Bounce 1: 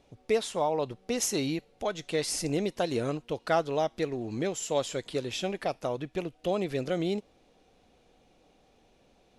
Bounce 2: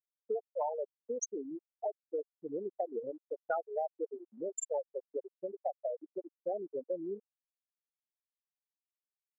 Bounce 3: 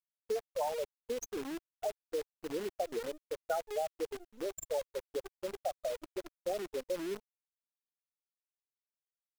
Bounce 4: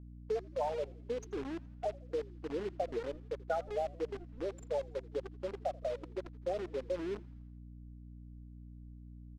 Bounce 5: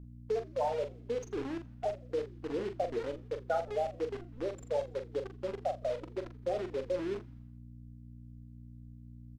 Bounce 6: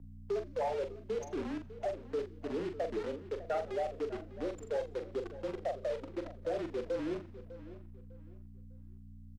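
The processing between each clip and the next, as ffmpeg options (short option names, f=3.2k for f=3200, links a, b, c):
-af "afftfilt=real='re*gte(hypot(re,im),0.178)':imag='im*gte(hypot(re,im),0.178)':win_size=1024:overlap=0.75,highpass=700,acompressor=threshold=-36dB:ratio=5,volume=4.5dB"
-af "highshelf=f=2k:g=-9,acrusher=bits=8:dc=4:mix=0:aa=0.000001,volume=1dB"
-filter_complex "[0:a]aeval=exprs='val(0)+0.00355*(sin(2*PI*60*n/s)+sin(2*PI*2*60*n/s)/2+sin(2*PI*3*60*n/s)/3+sin(2*PI*4*60*n/s)/4+sin(2*PI*5*60*n/s)/5)':c=same,adynamicsmooth=sensitivity=4:basefreq=2.9k,asplit=6[a][b][c][d][e][f];[b]adelay=83,afreqshift=-62,volume=-22.5dB[g];[c]adelay=166,afreqshift=-124,volume=-26.8dB[h];[d]adelay=249,afreqshift=-186,volume=-31.1dB[i];[e]adelay=332,afreqshift=-248,volume=-35.4dB[j];[f]adelay=415,afreqshift=-310,volume=-39.7dB[k];[a][g][h][i][j][k]amix=inputs=6:normalize=0"
-filter_complex "[0:a]asplit=2[a][b];[b]adelay=42,volume=-8dB[c];[a][c]amix=inputs=2:normalize=0,volume=2dB"
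-filter_complex "[0:a]afreqshift=-31,asoftclip=type=tanh:threshold=-26.5dB,asplit=2[a][b];[b]adelay=601,lowpass=f=3.6k:p=1,volume=-15dB,asplit=2[c][d];[d]adelay=601,lowpass=f=3.6k:p=1,volume=0.29,asplit=2[e][f];[f]adelay=601,lowpass=f=3.6k:p=1,volume=0.29[g];[a][c][e][g]amix=inputs=4:normalize=0"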